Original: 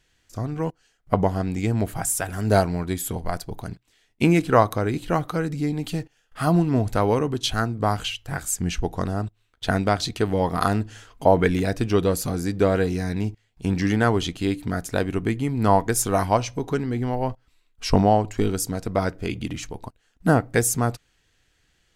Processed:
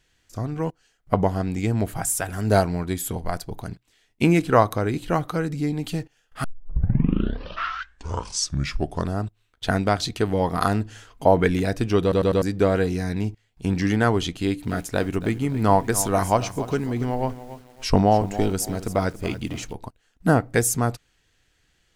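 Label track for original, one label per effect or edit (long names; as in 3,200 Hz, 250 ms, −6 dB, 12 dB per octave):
6.440000	6.440000	tape start 2.74 s
12.020000	12.020000	stutter in place 0.10 s, 4 plays
14.340000	19.730000	feedback echo at a low word length 280 ms, feedback 35%, word length 7 bits, level −13.5 dB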